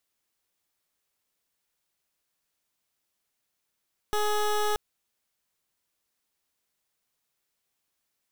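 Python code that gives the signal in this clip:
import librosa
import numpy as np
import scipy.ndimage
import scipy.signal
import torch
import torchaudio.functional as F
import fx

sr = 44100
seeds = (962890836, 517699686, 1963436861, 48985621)

y = fx.pulse(sr, length_s=0.63, hz=420.0, level_db=-25.5, duty_pct=18)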